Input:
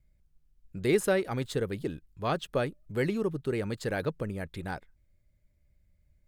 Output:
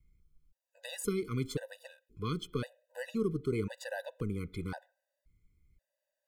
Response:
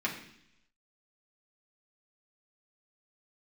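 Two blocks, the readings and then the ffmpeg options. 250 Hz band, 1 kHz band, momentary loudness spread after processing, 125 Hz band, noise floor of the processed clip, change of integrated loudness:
−4.5 dB, −10.0 dB, 13 LU, −3.5 dB, below −85 dBFS, −6.0 dB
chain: -filter_complex "[0:a]acrossover=split=350|3000[link_01][link_02][link_03];[link_02]acompressor=threshold=-37dB:ratio=4[link_04];[link_01][link_04][link_03]amix=inputs=3:normalize=0,asplit=2[link_05][link_06];[1:a]atrim=start_sample=2205,asetrate=66150,aresample=44100,lowpass=2800[link_07];[link_06][link_07]afir=irnorm=-1:irlink=0,volume=-17dB[link_08];[link_05][link_08]amix=inputs=2:normalize=0,afftfilt=real='re*gt(sin(2*PI*0.95*pts/sr)*(1-2*mod(floor(b*sr/1024/500),2)),0)':imag='im*gt(sin(2*PI*0.95*pts/sr)*(1-2*mod(floor(b*sr/1024/500),2)),0)':win_size=1024:overlap=0.75"

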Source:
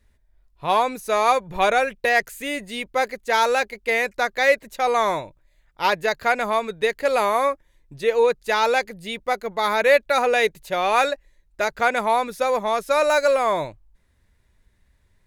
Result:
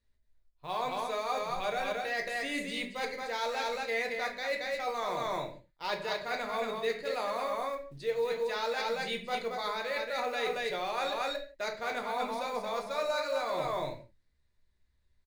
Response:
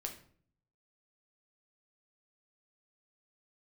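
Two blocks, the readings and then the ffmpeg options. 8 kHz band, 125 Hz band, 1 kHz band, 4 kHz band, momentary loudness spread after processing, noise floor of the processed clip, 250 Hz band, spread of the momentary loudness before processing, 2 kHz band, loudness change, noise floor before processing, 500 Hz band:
−12.0 dB, −8.5 dB, −12.5 dB, −8.0 dB, 4 LU, −72 dBFS, −9.5 dB, 8 LU, −12.5 dB, −12.5 dB, −63 dBFS, −12.0 dB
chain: -filter_complex "[0:a]lowpass=frequency=10000:width=0.5412,lowpass=frequency=10000:width=1.3066,equalizer=frequency=4300:width_type=o:width=0.54:gain=8,aecho=1:1:226:0.531,areverse,acompressor=threshold=-27dB:ratio=6,areverse,acrusher=bits=7:mode=log:mix=0:aa=0.000001,agate=range=-12dB:threshold=-48dB:ratio=16:detection=peak[link_01];[1:a]atrim=start_sample=2205,afade=type=out:start_time=0.23:duration=0.01,atrim=end_sample=10584[link_02];[link_01][link_02]afir=irnorm=-1:irlink=0,volume=-2.5dB"

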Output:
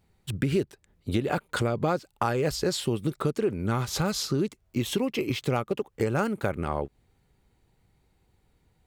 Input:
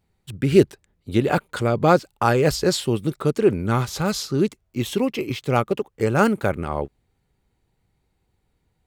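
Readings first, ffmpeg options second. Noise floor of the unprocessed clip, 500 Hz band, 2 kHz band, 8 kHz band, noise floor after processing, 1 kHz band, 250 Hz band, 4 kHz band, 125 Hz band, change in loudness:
−71 dBFS, −8.0 dB, −6.5 dB, −3.5 dB, −69 dBFS, −7.5 dB, −6.5 dB, −3.5 dB, −5.5 dB, −7.0 dB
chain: -af "acompressor=threshold=-27dB:ratio=5,volume=3dB"

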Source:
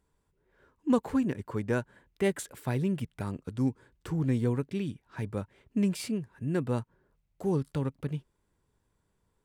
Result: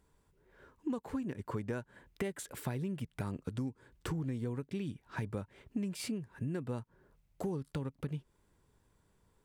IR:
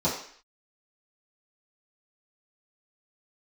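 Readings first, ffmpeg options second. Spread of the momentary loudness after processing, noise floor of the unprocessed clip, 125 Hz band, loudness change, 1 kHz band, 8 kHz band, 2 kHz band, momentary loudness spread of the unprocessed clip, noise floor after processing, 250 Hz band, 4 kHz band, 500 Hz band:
5 LU, −76 dBFS, −7.0 dB, −8.0 dB, −6.5 dB, −4.0 dB, −6.5 dB, 9 LU, −74 dBFS, −8.5 dB, −4.0 dB, −9.0 dB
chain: -af "acompressor=threshold=-38dB:ratio=10,volume=4dB"

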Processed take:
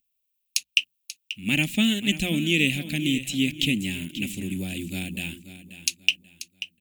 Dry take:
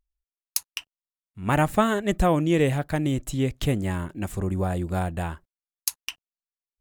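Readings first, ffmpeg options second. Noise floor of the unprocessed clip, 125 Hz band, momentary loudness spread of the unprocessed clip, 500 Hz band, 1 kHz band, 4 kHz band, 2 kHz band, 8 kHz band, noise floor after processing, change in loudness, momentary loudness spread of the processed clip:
below −85 dBFS, −5.5 dB, 12 LU, −11.0 dB, −21.0 dB, +12.0 dB, +6.5 dB, +2.5 dB, −77 dBFS, +0.5 dB, 15 LU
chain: -filter_complex "[0:a]aemphasis=mode=production:type=bsi,bandreject=frequency=60:width_type=h:width=6,bandreject=frequency=120:width_type=h:width=6,bandreject=frequency=180:width_type=h:width=6,acrossover=split=6900[link_01][link_02];[link_02]acompressor=threshold=-41dB:ratio=4:attack=1:release=60[link_03];[link_01][link_03]amix=inputs=2:normalize=0,firequalizer=gain_entry='entry(110,0);entry(240,10);entry(410,-10);entry(1100,-28);entry(2500,13);entry(4800,1)':delay=0.05:min_phase=1,aecho=1:1:536|1072|1608:0.224|0.0694|0.0215"

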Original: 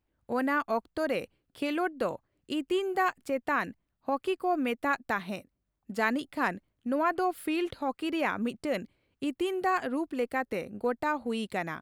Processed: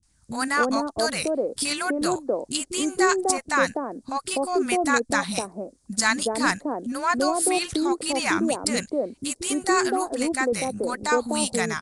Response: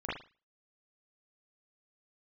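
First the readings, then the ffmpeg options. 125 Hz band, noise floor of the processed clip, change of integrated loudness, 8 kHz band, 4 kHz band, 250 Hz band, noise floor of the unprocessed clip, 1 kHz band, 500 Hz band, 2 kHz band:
+7.0 dB, −62 dBFS, +7.0 dB, +25.5 dB, +13.0 dB, +6.0 dB, −80 dBFS, +5.5 dB, +6.5 dB, +7.5 dB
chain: -filter_complex "[0:a]asplit=2[link_01][link_02];[link_02]acompressor=threshold=-42dB:ratio=6,volume=1dB[link_03];[link_01][link_03]amix=inputs=2:normalize=0,acrossover=split=240|780[link_04][link_05][link_06];[link_06]adelay=30[link_07];[link_05]adelay=280[link_08];[link_04][link_08][link_07]amix=inputs=3:normalize=0,aexciter=amount=8.3:drive=3.7:freq=4300,volume=6.5dB" -ar 22050 -c:a nellymoser

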